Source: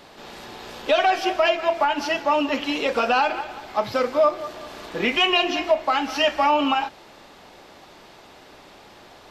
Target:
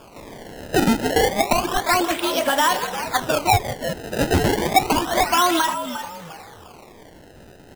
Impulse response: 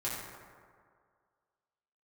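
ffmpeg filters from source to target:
-filter_complex "[0:a]asplit=5[s0][s1][s2][s3][s4];[s1]adelay=423,afreqshift=-67,volume=0.316[s5];[s2]adelay=846,afreqshift=-134,volume=0.107[s6];[s3]adelay=1269,afreqshift=-201,volume=0.0367[s7];[s4]adelay=1692,afreqshift=-268,volume=0.0124[s8];[s0][s5][s6][s7][s8]amix=inputs=5:normalize=0,asetrate=52920,aresample=44100,acrusher=samples=22:mix=1:aa=0.000001:lfo=1:lforange=35.2:lforate=0.3,volume=1.19"

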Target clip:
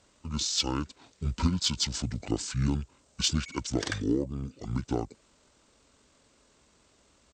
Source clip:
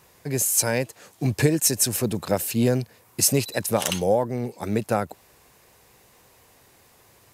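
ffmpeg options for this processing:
-af "asetrate=24750,aresample=44100,atempo=1.7818,aeval=exprs='0.501*(cos(1*acos(clip(val(0)/0.501,-1,1)))-cos(1*PI/2))+0.00562*(cos(7*acos(clip(val(0)/0.501,-1,1)))-cos(7*PI/2))':c=same,volume=0.473"

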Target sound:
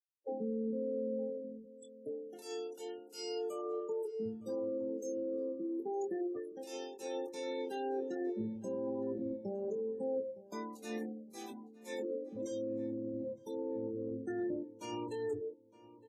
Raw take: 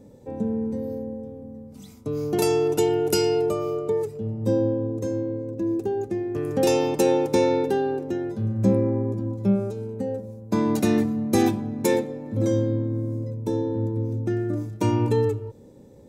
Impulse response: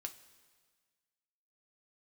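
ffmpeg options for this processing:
-filter_complex "[0:a]highpass=140,aemphasis=mode=production:type=riaa,bandreject=f=50:t=h:w=6,bandreject=f=100:t=h:w=6,bandreject=f=150:t=h:w=6,bandreject=f=200:t=h:w=6,bandreject=f=250:t=h:w=6,bandreject=f=300:t=h:w=6,bandreject=f=350:t=h:w=6,bandreject=f=400:t=h:w=6,afftfilt=real='re*gte(hypot(re,im),0.0398)':imag='im*gte(hypot(re,im),0.0398)':win_size=1024:overlap=0.75,highshelf=f=6000:g=9,areverse,acompressor=threshold=0.0158:ratio=8,areverse,alimiter=level_in=2.66:limit=0.0631:level=0:latency=1:release=114,volume=0.376,adynamicsmooth=sensitivity=1:basefreq=4500,asplit=2[s0][s1];[s1]adelay=23,volume=0.447[s2];[s0][s2]amix=inputs=2:normalize=0,asplit=2[s3][s4];[s4]adelay=912,lowpass=f=2000:p=1,volume=0.126,asplit=2[s5][s6];[s6]adelay=912,lowpass=f=2000:p=1,volume=0.33,asplit=2[s7][s8];[s8]adelay=912,lowpass=f=2000:p=1,volume=0.33[s9];[s3][s5][s7][s9]amix=inputs=4:normalize=0,volume=1.19" -ar 32000 -c:a libvorbis -b:a 64k

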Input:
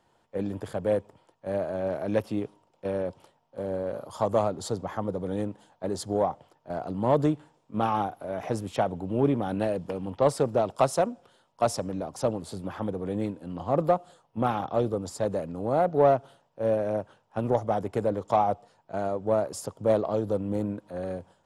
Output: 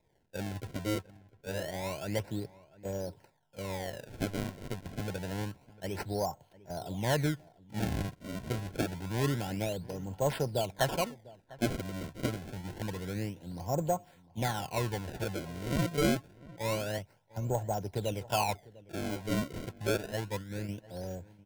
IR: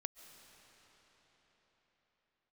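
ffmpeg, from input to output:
-filter_complex "[0:a]asettb=1/sr,asplit=3[s0][s1][s2];[s0]atrim=end=19.974[s3];[s1]atrim=start=19.97:end=20.69,asetpts=PTS-STARTPTS,afade=t=in:d=0.004:c=qsin,afade=t=out:st=0.716:d=0.004:c=qsin,agate=range=0.0224:threshold=0.0708:ratio=3:detection=peak[s4];[s2]atrim=start=20.686[s5];[s3][s4]acrossfade=d=0.004:c1=hsin:c2=qsin[s6];[s6][s5]acrossfade=d=0.004:c1=qsin:c2=hsin,equalizer=f=250:t=o:w=1:g=-10,equalizer=f=500:t=o:w=1:g=-7,equalizer=f=1000:t=o:w=1:g=-5,equalizer=f=2000:t=o:w=1:g=-10,equalizer=f=4000:t=o:w=1:g=-4,asettb=1/sr,asplit=3[s7][s8][s9];[s7]atrim=end=16.984[s10];[s8]atrim=start=16.98:end=17.5,asetpts=PTS-STARTPTS,afade=t=in:d=0.004:c=qsin,afade=t=out:st=0.516:d=0.004:c=qsin,acrossover=split=310[s11][s12];[s12]acompressor=threshold=0.00501:ratio=6[s13];[s11][s13]amix=inputs=2:normalize=0[s14];[s9]atrim=start=17.496[s15];[s10][s14]acrossfade=d=0.004:c1=hsin:c2=qsin[s16];[s16][s15]acrossfade=d=0.004:c1=qsin:c2=hsin,acrusher=samples=29:mix=1:aa=0.000001:lfo=1:lforange=46.4:lforate=0.27,asplit=3[s17][s18][s19];[s17]afade=t=out:st=4.29:d=0.02[s20];[s18]tremolo=f=98:d=0.947,afade=t=in:st=4.29:d=0.02,afade=t=out:st=4.86:d=0.02[s21];[s19]afade=t=in:st=4.86:d=0.02[s22];[s20][s21][s22]amix=inputs=3:normalize=0,asuperstop=centerf=1200:order=20:qfactor=5.5,asplit=2[s23][s24];[s24]adelay=699.7,volume=0.1,highshelf=f=4000:g=-15.7[s25];[s23][s25]amix=inputs=2:normalize=0,volume=1.19"

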